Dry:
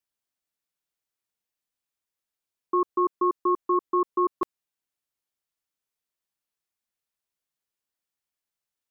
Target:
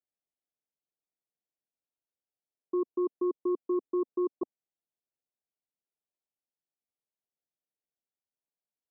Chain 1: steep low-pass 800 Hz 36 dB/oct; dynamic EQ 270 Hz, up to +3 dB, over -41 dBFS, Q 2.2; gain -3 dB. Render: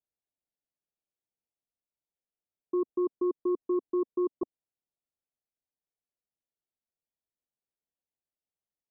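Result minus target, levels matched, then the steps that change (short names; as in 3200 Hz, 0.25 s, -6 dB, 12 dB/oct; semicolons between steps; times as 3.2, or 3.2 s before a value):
125 Hz band +3.0 dB
add after dynamic EQ: HPF 170 Hz 6 dB/oct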